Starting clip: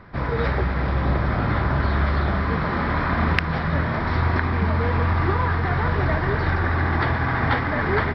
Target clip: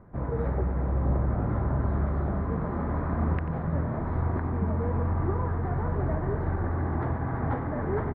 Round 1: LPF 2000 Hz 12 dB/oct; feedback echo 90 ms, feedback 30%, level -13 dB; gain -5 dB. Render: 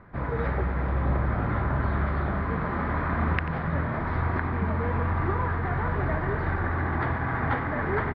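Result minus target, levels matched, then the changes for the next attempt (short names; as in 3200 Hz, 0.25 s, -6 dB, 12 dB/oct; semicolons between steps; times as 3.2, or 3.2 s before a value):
2000 Hz band +10.5 dB
change: LPF 770 Hz 12 dB/oct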